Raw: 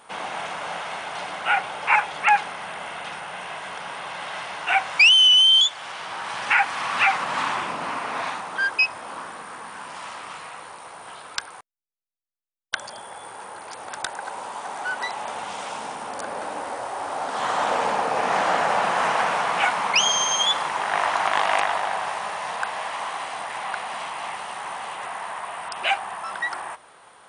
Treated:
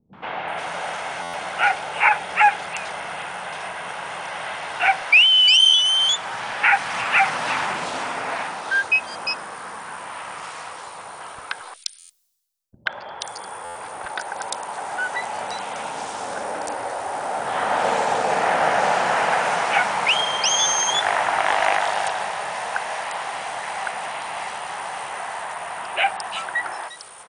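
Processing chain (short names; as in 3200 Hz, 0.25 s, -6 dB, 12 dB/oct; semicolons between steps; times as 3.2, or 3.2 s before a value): dynamic EQ 1100 Hz, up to -7 dB, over -40 dBFS, Q 3.8; reverse; upward compressor, threshold -44 dBFS; reverse; three bands offset in time lows, mids, highs 0.13/0.48 s, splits 260/3400 Hz; stuck buffer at 1.22/11.98/13.64, samples 512, times 9; gain +4 dB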